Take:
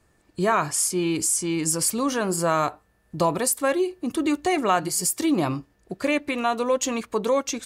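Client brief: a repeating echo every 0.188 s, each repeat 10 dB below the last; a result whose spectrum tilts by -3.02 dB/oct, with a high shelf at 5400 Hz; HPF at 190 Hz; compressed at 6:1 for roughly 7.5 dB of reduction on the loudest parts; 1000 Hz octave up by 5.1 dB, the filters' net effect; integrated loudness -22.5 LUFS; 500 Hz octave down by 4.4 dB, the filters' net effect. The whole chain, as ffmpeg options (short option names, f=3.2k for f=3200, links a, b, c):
-af "highpass=190,equalizer=f=500:t=o:g=-8.5,equalizer=f=1k:t=o:g=8.5,highshelf=f=5.4k:g=7,acompressor=threshold=-21dB:ratio=6,aecho=1:1:188|376|564|752:0.316|0.101|0.0324|0.0104,volume=2.5dB"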